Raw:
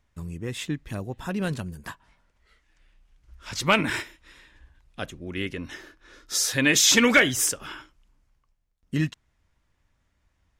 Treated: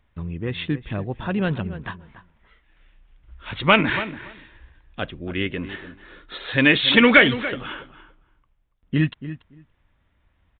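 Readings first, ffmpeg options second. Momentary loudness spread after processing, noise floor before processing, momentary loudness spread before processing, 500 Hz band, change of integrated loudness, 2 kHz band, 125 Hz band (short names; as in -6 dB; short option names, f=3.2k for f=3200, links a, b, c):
22 LU, -71 dBFS, 23 LU, +5.0 dB, +3.0 dB, +5.0 dB, +5.0 dB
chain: -filter_complex "[0:a]asplit=2[a][b];[b]adelay=285,lowpass=f=1.7k:p=1,volume=-12.5dB,asplit=2[c][d];[d]adelay=285,lowpass=f=1.7k:p=1,volume=0.15[e];[a][c][e]amix=inputs=3:normalize=0,aresample=8000,aresample=44100,volume=5dB"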